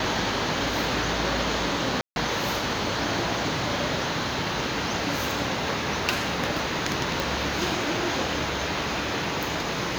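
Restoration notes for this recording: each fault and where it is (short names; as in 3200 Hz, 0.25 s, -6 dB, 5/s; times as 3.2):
2.01–2.16 gap 0.151 s
7.2 pop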